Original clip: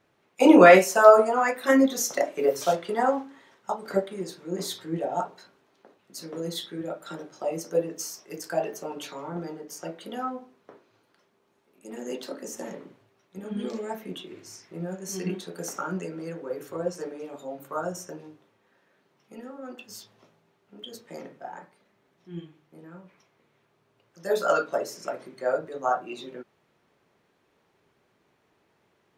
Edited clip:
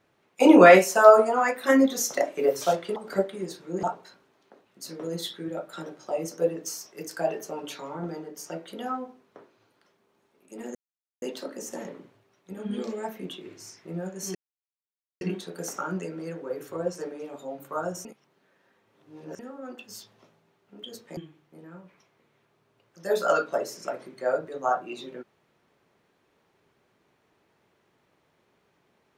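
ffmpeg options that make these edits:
-filter_complex "[0:a]asplit=8[a][b][c][d][e][f][g][h];[a]atrim=end=2.962[i];[b]atrim=start=3.738:end=4.612[j];[c]atrim=start=5.158:end=12.08,asetpts=PTS-STARTPTS,afade=t=out:st=6.918:d=0.004:c=hsin,apad=pad_dur=0.47[k];[d]atrim=start=12.08:end=15.21,asetpts=PTS-STARTPTS,afade=t=in:d=0.004:c=hsin,afade=t=out:st=3.126:d=0.004:c=hsin,apad=pad_dur=0.86[l];[e]atrim=start=15.21:end=18.052,asetpts=PTS-STARTPTS,afade=t=in:d=0.004:c=hsin[m];[f]atrim=start=18.048:end=19.392,asetpts=PTS-STARTPTS,areverse[n];[g]atrim=start=19.388:end=21.172[o];[h]atrim=start=22.368[p];[i][j]acrossfade=d=0.004:c1=hsin:c2=hsin[q];[k][l][m]concat=n=3:v=0:a=1[r];[q][r]acrossfade=d=0.004:c1=hsin:c2=hsin[s];[s][n]acrossfade=d=0.004:c1=hsin:c2=hsin[t];[t][o]acrossfade=d=0.004:c1=hsin:c2=hsin[u];[u][p]acrossfade=d=0.004:c1=hsin:c2=hsin"

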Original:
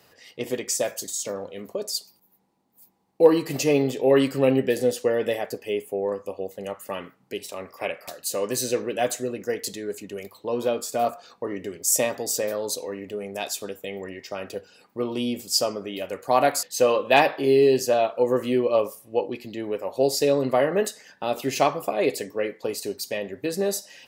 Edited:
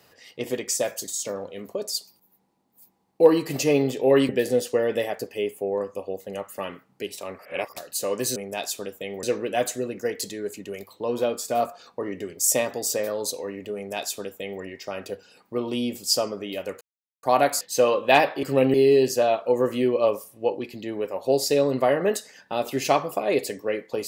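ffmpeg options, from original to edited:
-filter_complex "[0:a]asplit=9[a][b][c][d][e][f][g][h][i];[a]atrim=end=4.292[j];[b]atrim=start=4.598:end=7.702[k];[c]atrim=start=7.698:end=8.072,asetpts=PTS-STARTPTS,areverse[l];[d]atrim=start=8.068:end=8.672[m];[e]atrim=start=13.188:end=14.062[n];[f]atrim=start=8.668:end=16.25,asetpts=PTS-STARTPTS,afade=t=out:st=7.578:d=0.004:c=hsin,apad=pad_dur=0.42[o];[g]atrim=start=16.25:end=17.452,asetpts=PTS-STARTPTS,afade=t=in:d=0.004:c=hsin[p];[h]atrim=start=4.288:end=4.602[q];[i]atrim=start=17.448[r];[j][k]acrossfade=d=0.004:c1=hsin:c2=hsin[s];[s][l]acrossfade=d=0.004:c1=hsin:c2=hsin[t];[t][m]acrossfade=d=0.004:c1=hsin:c2=hsin[u];[u][n]acrossfade=d=0.004:c1=hsin:c2=hsin[v];[o][p]concat=n=2:v=0:a=1[w];[v][w]acrossfade=d=0.004:c1=hsin:c2=hsin[x];[x][q]acrossfade=d=0.004:c1=hsin:c2=hsin[y];[y][r]acrossfade=d=0.004:c1=hsin:c2=hsin"

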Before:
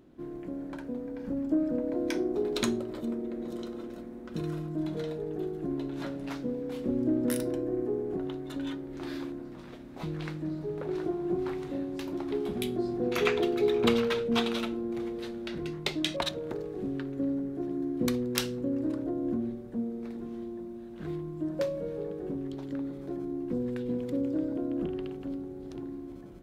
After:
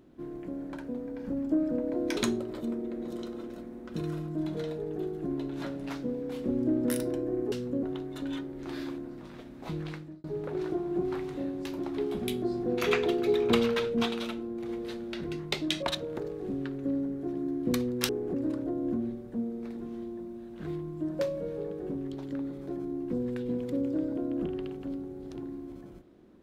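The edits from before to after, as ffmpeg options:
-filter_complex "[0:a]asplit=9[a][b][c][d][e][f][g][h][i];[a]atrim=end=2.172[j];[b]atrim=start=2.568:end=7.922[k];[c]atrim=start=18.428:end=18.742[l];[d]atrim=start=8.168:end=10.58,asetpts=PTS-STARTPTS,afade=t=out:st=1.982:d=0.43[m];[e]atrim=start=10.58:end=14.372,asetpts=PTS-STARTPTS,afade=t=in:d=0.004:c=hsin[n];[f]atrim=start=14.368:end=15.032,asetpts=PTS-STARTPTS,volume=-3dB[o];[g]atrim=start=15.028:end=18.432[p];[h]atrim=start=7.918:end=8.172[q];[i]atrim=start=18.738[r];[j][k]acrossfade=d=0.004:c1=hsin:c2=hsin[s];[s][l]acrossfade=d=0.004:c1=hsin:c2=hsin[t];[m][n]concat=n=2:v=0:a=1[u];[t][u]acrossfade=d=0.004:c1=hsin:c2=hsin[v];[v][o]acrossfade=d=0.004:c1=hsin:c2=hsin[w];[w][p]acrossfade=d=0.004:c1=hsin:c2=hsin[x];[x][q]acrossfade=d=0.004:c1=hsin:c2=hsin[y];[y][r]acrossfade=d=0.004:c1=hsin:c2=hsin"

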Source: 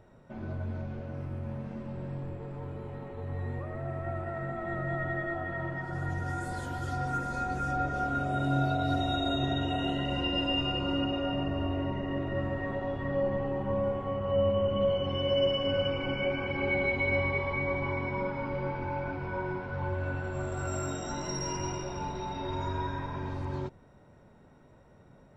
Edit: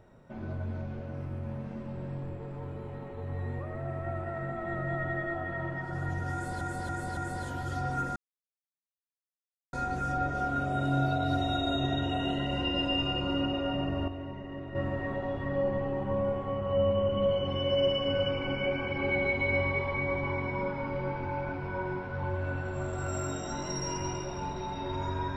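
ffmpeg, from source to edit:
-filter_complex "[0:a]asplit=7[a][b][c][d][e][f][g];[a]atrim=end=6.612[h];[b]atrim=start=6.328:end=6.612[i];[c]atrim=start=6.328:end=6.612[j];[d]atrim=start=6.328:end=7.32,asetpts=PTS-STARTPTS,afade=t=out:st=0.988:d=0.004:c=hsin,apad=pad_dur=1.57[k];[e]atrim=start=7.32:end=11.672,asetpts=PTS-STARTPTS,afade=t=in:d=0.004:c=hsin[l];[f]atrim=start=11.668:end=12.342,asetpts=PTS-STARTPTS,volume=-7.5dB[m];[g]atrim=start=12.338[n];[h][i]acrossfade=d=0.004:c1=hsin:c2=hsin[o];[o][j]acrossfade=d=0.004:c1=hsin:c2=hsin[p];[k][l]concat=n=2:v=0:a=1[q];[p][q]acrossfade=d=0.004:c1=hsin:c2=hsin[r];[r][m]acrossfade=d=0.004:c1=hsin:c2=hsin[s];[s][n]acrossfade=d=0.004:c1=hsin:c2=hsin"

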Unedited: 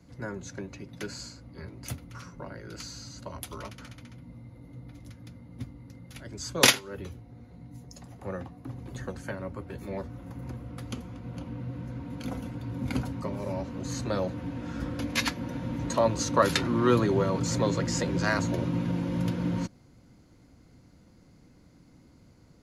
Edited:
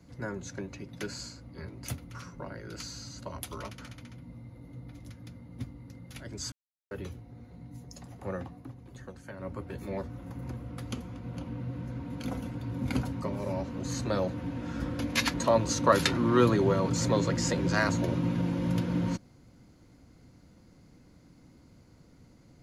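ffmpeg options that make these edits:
-filter_complex "[0:a]asplit=6[a][b][c][d][e][f];[a]atrim=end=6.52,asetpts=PTS-STARTPTS,afade=t=out:st=6.516:d=0.004:c=hsin[g];[b]atrim=start=6.52:end=6.91,asetpts=PTS-STARTPTS,volume=0[h];[c]atrim=start=6.91:end=8.74,asetpts=PTS-STARTPTS,afade=t=in:d=0.004:c=hsin,afade=t=out:st=1.65:d=0.18:silence=0.375837[i];[d]atrim=start=8.74:end=9.33,asetpts=PTS-STARTPTS,volume=-8.5dB[j];[e]atrim=start=9.33:end=15.342,asetpts=PTS-STARTPTS,afade=t=in:d=0.18:silence=0.375837[k];[f]atrim=start=15.838[l];[g][h][i][j][k]concat=n=5:v=0:a=1[m];[m][l]acrossfade=d=0.004:c1=hsin:c2=hsin"

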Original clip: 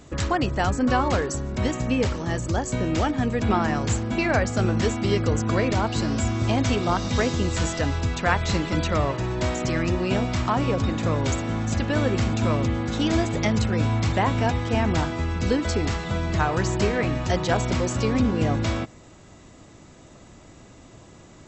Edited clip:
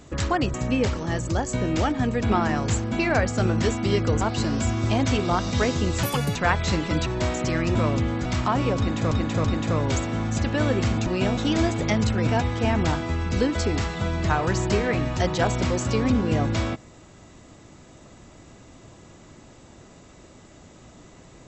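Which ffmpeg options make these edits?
-filter_complex "[0:a]asplit=13[a][b][c][d][e][f][g][h][i][j][k][l][m];[a]atrim=end=0.542[n];[b]atrim=start=1.728:end=5.402[o];[c]atrim=start=5.788:end=7.614[p];[d]atrim=start=7.61:end=8.17,asetpts=PTS-STARTPTS,asetrate=76293,aresample=44100,atrim=end_sample=14275,asetpts=PTS-STARTPTS[q];[e]atrim=start=8.166:end=8.882[r];[f]atrim=start=9.268:end=9.962[s];[g]atrim=start=12.418:end=12.922[t];[h]atrim=start=10.268:end=11.132[u];[i]atrim=start=10.798:end=11.132[v];[j]atrim=start=10.798:end=12.422[w];[k]atrim=start=9.958:end=10.272[x];[l]atrim=start=12.918:end=13.822[y];[m]atrim=start=14.368[z];[n][o]acrossfade=d=0.004:c1=hsin:c2=hsin[aa];[aa][p]acrossfade=d=0.004:c1=hsin:c2=hsin[ab];[ab][q]acrossfade=d=0.004:c1=hsin:c2=hsin[ac];[ac][r]acrossfade=d=0.004:c1=hsin:c2=hsin[ad];[ad][s]acrossfade=d=0.004:c1=hsin:c2=hsin[ae];[ae][t]acrossfade=d=0.004:c1=hsin:c2=hsin[af];[af][u]acrossfade=d=0.004:c1=hsin:c2=hsin[ag];[ag][v]acrossfade=d=0.004:c1=hsin:c2=hsin[ah];[ah][w]acrossfade=d=0.004:c1=hsin:c2=hsin[ai];[ai][x]acrossfade=d=0.004:c1=hsin:c2=hsin[aj];[aj][y]acrossfade=d=0.004:c1=hsin:c2=hsin[ak];[ak][z]acrossfade=d=0.004:c1=hsin:c2=hsin"

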